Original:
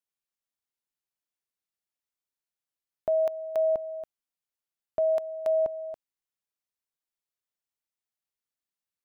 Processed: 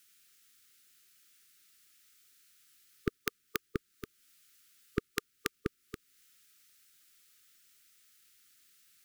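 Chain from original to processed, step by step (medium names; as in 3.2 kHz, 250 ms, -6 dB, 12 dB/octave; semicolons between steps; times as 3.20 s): brick-wall FIR band-stop 440–1200 Hz; tape noise reduction on one side only encoder only; trim +17.5 dB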